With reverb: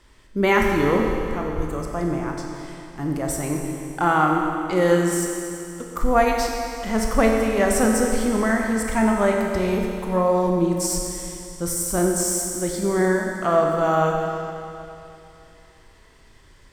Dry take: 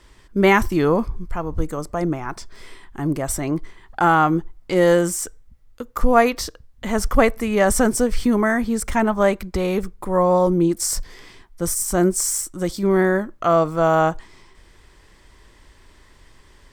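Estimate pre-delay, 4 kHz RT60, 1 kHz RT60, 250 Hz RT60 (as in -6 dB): 23 ms, 2.7 s, 2.8 s, 2.8 s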